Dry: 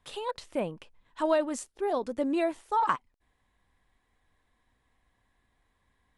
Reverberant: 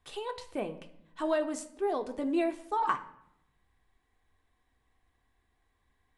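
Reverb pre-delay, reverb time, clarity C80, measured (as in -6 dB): 3 ms, 0.75 s, 17.5 dB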